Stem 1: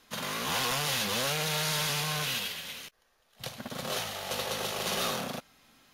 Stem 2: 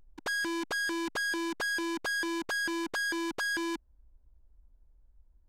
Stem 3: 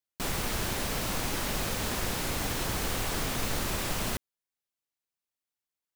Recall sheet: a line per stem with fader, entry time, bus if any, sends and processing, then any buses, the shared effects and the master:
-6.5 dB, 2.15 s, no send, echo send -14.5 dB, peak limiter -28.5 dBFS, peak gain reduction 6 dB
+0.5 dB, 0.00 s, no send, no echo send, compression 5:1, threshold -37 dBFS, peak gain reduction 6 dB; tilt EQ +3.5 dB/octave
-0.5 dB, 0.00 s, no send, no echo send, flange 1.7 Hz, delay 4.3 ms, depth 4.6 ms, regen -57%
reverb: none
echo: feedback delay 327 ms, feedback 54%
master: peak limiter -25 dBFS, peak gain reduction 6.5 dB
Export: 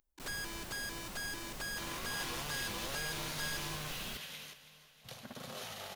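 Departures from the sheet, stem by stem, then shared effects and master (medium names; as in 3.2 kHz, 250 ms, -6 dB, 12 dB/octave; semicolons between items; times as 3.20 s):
stem 1: entry 2.15 s -> 1.65 s; stem 2 +0.5 dB -> -8.0 dB; stem 3 -0.5 dB -> -10.5 dB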